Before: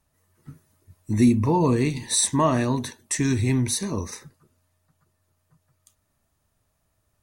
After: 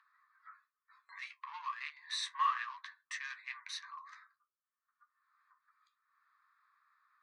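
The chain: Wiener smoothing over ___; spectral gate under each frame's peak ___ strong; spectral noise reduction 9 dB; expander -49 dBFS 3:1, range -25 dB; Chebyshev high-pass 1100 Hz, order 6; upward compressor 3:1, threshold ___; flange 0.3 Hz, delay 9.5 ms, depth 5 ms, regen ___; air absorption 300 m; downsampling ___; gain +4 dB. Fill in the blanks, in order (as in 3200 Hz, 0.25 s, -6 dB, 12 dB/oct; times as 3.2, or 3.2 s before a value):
15 samples, -60 dB, -42 dBFS, -47%, 22050 Hz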